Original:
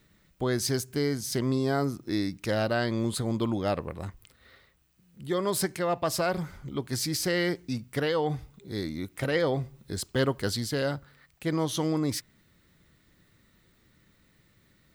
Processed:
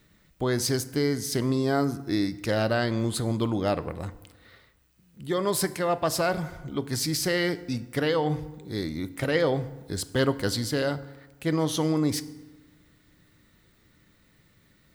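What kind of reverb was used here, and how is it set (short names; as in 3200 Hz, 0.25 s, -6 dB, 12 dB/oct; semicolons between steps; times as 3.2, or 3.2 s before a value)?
FDN reverb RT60 1.2 s, low-frequency decay 1.1×, high-frequency decay 0.6×, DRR 13.5 dB; gain +2 dB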